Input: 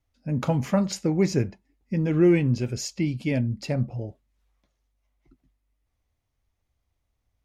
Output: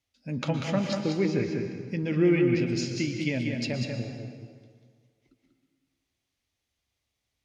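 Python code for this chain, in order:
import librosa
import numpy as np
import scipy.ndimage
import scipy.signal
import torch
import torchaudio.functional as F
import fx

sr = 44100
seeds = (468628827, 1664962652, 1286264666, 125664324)

y = fx.weighting(x, sr, curve='D')
y = fx.env_lowpass_down(y, sr, base_hz=2400.0, full_db=-20.0)
y = fx.peak_eq(y, sr, hz=1900.0, db=-4.5, octaves=3.0)
y = y + 10.0 ** (-5.5 / 20.0) * np.pad(y, (int(191 * sr / 1000.0), 0))[:len(y)]
y = fx.rev_plate(y, sr, seeds[0], rt60_s=1.8, hf_ratio=0.75, predelay_ms=105, drr_db=6.0)
y = y * 10.0 ** (-2.5 / 20.0)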